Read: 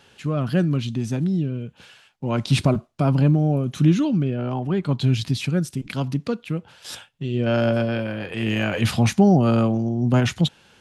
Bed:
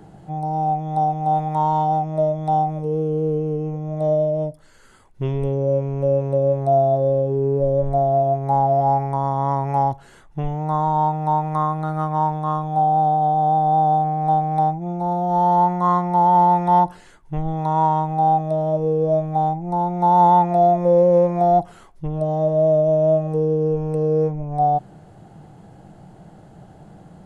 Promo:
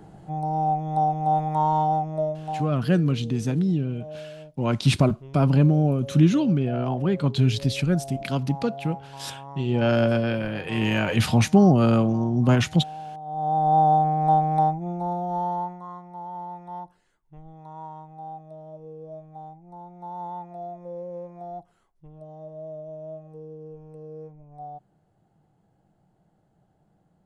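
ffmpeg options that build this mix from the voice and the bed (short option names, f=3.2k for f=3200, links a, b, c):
-filter_complex "[0:a]adelay=2350,volume=-0.5dB[a];[1:a]volume=16dB,afade=t=out:st=1.85:d=0.92:silence=0.141254,afade=t=in:st=13.25:d=0.52:silence=0.11885,afade=t=out:st=14.45:d=1.41:silence=0.0944061[b];[a][b]amix=inputs=2:normalize=0"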